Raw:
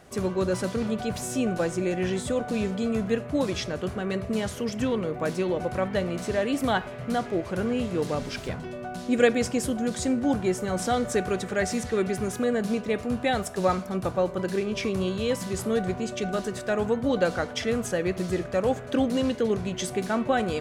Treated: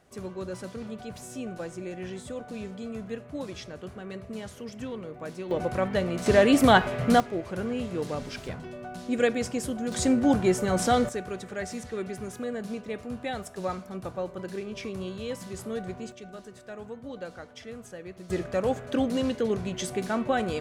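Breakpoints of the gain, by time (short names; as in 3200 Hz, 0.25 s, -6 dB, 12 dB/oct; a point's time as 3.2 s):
-10 dB
from 5.51 s 0 dB
from 6.26 s +7 dB
from 7.2 s -4 dB
from 9.92 s +2.5 dB
from 11.09 s -8 dB
from 16.12 s -15 dB
from 18.3 s -2 dB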